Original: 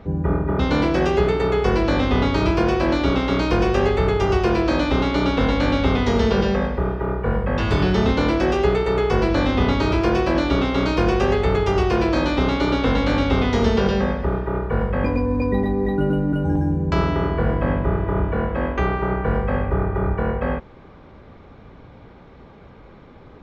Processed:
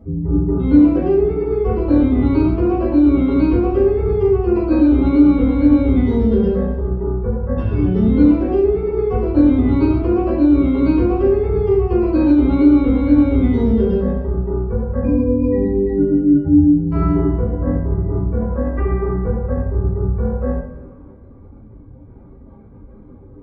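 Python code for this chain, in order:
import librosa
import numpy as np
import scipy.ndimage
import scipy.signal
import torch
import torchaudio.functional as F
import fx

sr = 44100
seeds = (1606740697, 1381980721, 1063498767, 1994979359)

y = fx.spec_expand(x, sr, power=2.1)
y = fx.rev_double_slope(y, sr, seeds[0], early_s=0.49, late_s=2.0, knee_db=-16, drr_db=-7.5)
y = F.gain(torch.from_numpy(y), -4.5).numpy()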